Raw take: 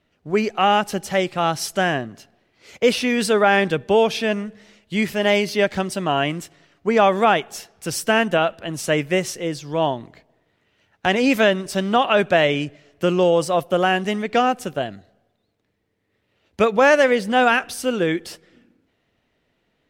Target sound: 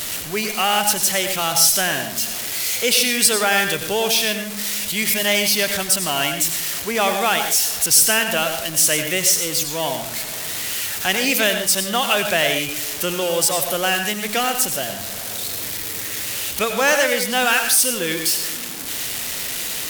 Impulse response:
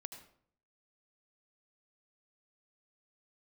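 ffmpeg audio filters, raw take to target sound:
-filter_complex "[0:a]aeval=exprs='val(0)+0.5*0.0562*sgn(val(0))':c=same[a];[1:a]atrim=start_sample=2205,afade=t=out:st=0.19:d=0.01,atrim=end_sample=8820,asetrate=36603,aresample=44100[b];[a][b]afir=irnorm=-1:irlink=0,crystalizer=i=9:c=0,volume=-5dB"

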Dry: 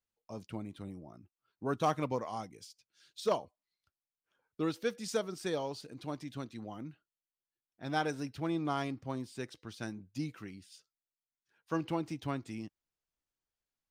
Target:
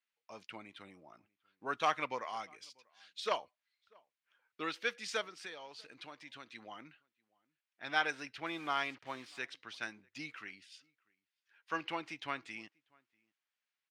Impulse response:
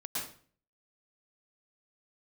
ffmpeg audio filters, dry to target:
-filter_complex "[0:a]asettb=1/sr,asplit=3[a][b][c];[a]atrim=end=5.234[d];[b]atrim=start=5.23:end=6.47,asetpts=PTS-STARTPTS,afade=t=in:d=0.004:c=qsin,afade=t=out:st=1.236:d=0.004:c=qsin,acompressor=threshold=-42dB:ratio=6[e];[c]atrim=start=6.466[f];[d][e]acrossfade=d=0.004:c1=hsin:c2=qsin[g];[g][f]acrossfade=d=0.004:c1=qsin:c2=hsin,asettb=1/sr,asplit=3[h][i][j];[h]atrim=end=8.464[k];[i]atrim=start=8.46:end=9.39,asetpts=PTS-STARTPTS,afade=t=in:d=0.004:c=qsin,afade=t=out:st=0.926:d=0.004:c=qsin,acrusher=bits=8:mix=0:aa=0.5[l];[j]atrim=start=9.386[m];[k][l]acrossfade=d=0.004:c1=hsin:c2=qsin[n];[n][m]acrossfade=d=0.004:c1=qsin:c2=hsin,bandpass=f=2.2k:t=q:w=1.4:csg=0,asplit=2[o][p];[p]adelay=641.4,volume=-29dB,highshelf=f=4k:g=-14.4[q];[o][q]amix=inputs=2:normalize=0,volume=9dB"

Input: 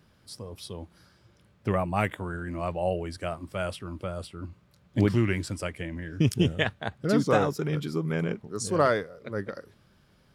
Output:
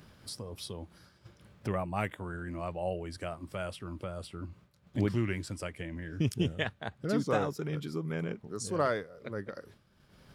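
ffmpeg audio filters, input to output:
-af "agate=range=-33dB:threshold=-50dB:ratio=3:detection=peak,acompressor=mode=upward:threshold=-27dB:ratio=2.5,volume=-6.5dB"

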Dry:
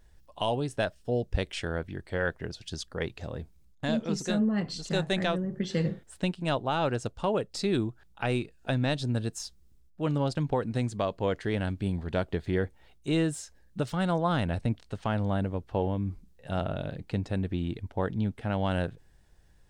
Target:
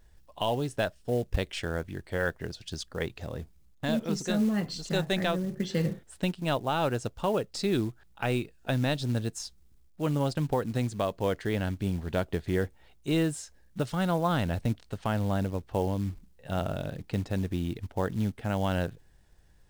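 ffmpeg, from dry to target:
-af "acrusher=bits=6:mode=log:mix=0:aa=0.000001"

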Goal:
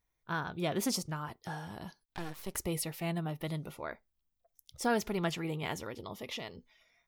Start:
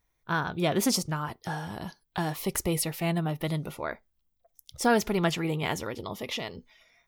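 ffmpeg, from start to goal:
-filter_complex "[0:a]asettb=1/sr,asplit=3[a][b][c];[a]atrim=end=2.024[d];[b]atrim=start=2.02:end=2.55,asetpts=PTS-STARTPTS,afade=t=in:d=0.004:c=qsin,afade=t=out:st=0.526:d=0.004:c=qsin,aeval=exprs='max(val(0),0)':c=same[e];[c]atrim=start=2.546[f];[d][e]acrossfade=d=0.004:c1=hsin:c2=qsin[g];[g][f]acrossfade=d=0.004:c1=qsin:c2=hsin,volume=-7dB"

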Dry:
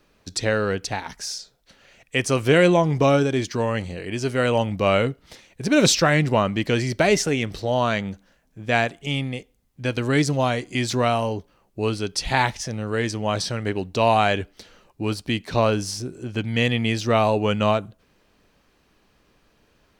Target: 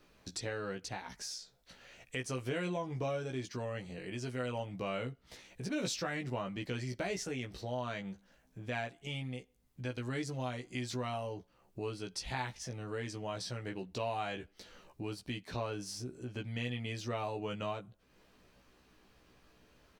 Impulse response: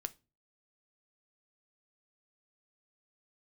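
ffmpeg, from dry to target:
-filter_complex "[0:a]asplit=2[a][b];[b]adelay=16,volume=-3.5dB[c];[a][c]amix=inputs=2:normalize=0,acompressor=threshold=-42dB:ratio=2,volume=-5dB"

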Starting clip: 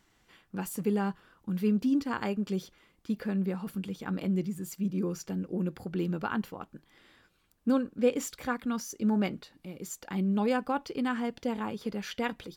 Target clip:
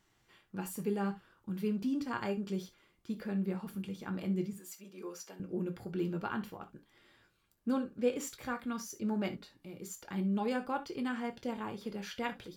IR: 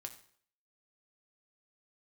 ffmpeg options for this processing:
-filter_complex "[0:a]asettb=1/sr,asplit=3[a][b][c];[a]atrim=end=4.534[d];[b]atrim=start=4.53:end=5.4,asetpts=PTS-STARTPTS,afade=t=in:d=0.004:c=qsin,afade=t=out:st=0.866:d=0.004:c=qsin,highpass=560[e];[c]atrim=start=5.396[f];[d][e]acrossfade=d=0.004:c1=hsin:c2=qsin[g];[g][f]acrossfade=d=0.004:c1=qsin:c2=hsin[h];[1:a]atrim=start_sample=2205,atrim=end_sample=3528[i];[h][i]afir=irnorm=-1:irlink=0"

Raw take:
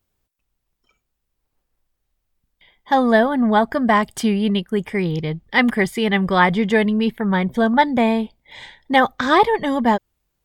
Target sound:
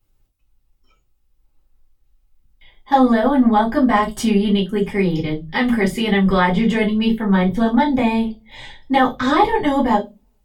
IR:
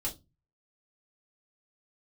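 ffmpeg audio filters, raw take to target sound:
-filter_complex "[0:a]alimiter=limit=-9.5dB:level=0:latency=1:release=77[a];[1:a]atrim=start_sample=2205[b];[a][b]afir=irnorm=-1:irlink=0"

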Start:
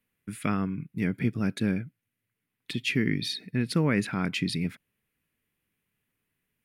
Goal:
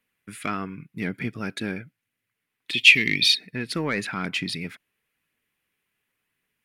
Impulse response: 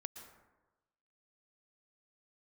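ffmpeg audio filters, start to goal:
-filter_complex "[0:a]aphaser=in_gain=1:out_gain=1:delay=3.2:decay=0.21:speed=0.93:type=triangular,asplit=2[a][b];[b]highpass=f=720:p=1,volume=12dB,asoftclip=type=tanh:threshold=-11.5dB[c];[a][c]amix=inputs=2:normalize=0,lowpass=f=6.5k:p=1,volume=-6dB,asettb=1/sr,asplit=3[d][e][f];[d]atrim=end=2.734[g];[e]atrim=start=2.73:end=3.35,asetpts=PTS-STARTPTS,afade=t=in:d=0.004:c=qsin,afade=t=out:st=0.616:d=0.004:c=qsin,highshelf=f=1.9k:t=q:w=3:g=8.5[h];[f]atrim=start=3.346[i];[g][h]acrossfade=d=0.004:c1=hsin:c2=qsin[j];[j][i]acrossfade=d=0.004:c1=qsin:c2=hsin,volume=-2dB"

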